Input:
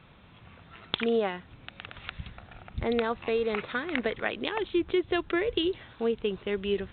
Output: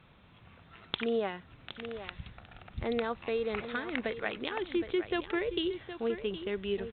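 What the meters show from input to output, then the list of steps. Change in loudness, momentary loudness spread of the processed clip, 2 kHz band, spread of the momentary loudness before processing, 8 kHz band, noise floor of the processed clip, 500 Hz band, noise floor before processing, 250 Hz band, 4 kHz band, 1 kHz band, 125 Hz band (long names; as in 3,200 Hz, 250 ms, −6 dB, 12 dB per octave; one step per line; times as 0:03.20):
−4.5 dB, 13 LU, −4.0 dB, 15 LU, can't be measured, −58 dBFS, −4.5 dB, −54 dBFS, −4.0 dB, −4.0 dB, −4.0 dB, −4.5 dB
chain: single-tap delay 766 ms −11 dB
level −4.5 dB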